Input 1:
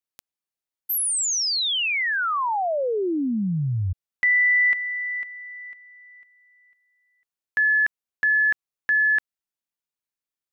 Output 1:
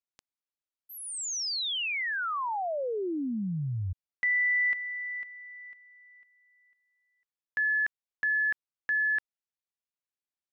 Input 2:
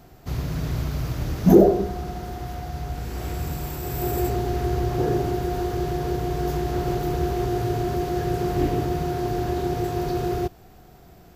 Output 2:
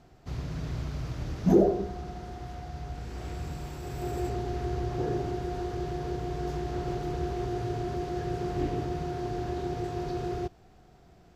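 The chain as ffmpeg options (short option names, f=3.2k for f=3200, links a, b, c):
-af "lowpass=7.2k,volume=-7.5dB"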